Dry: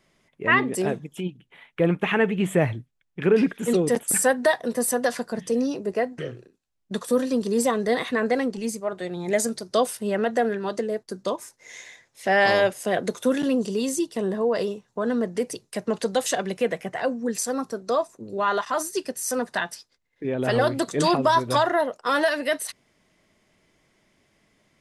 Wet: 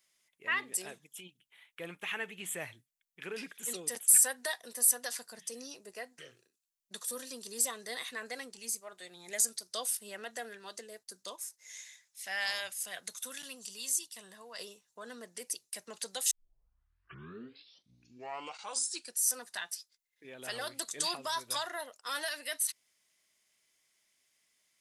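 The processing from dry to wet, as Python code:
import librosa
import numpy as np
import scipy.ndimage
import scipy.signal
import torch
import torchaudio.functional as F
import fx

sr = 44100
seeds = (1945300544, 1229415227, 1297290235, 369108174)

y = fx.peak_eq(x, sr, hz=380.0, db=-10.5, octaves=1.5, at=(11.81, 14.59))
y = fx.edit(y, sr, fx.tape_start(start_s=16.31, length_s=2.94), tone=tone)
y = scipy.signal.lfilter([1.0, -0.97], [1.0], y)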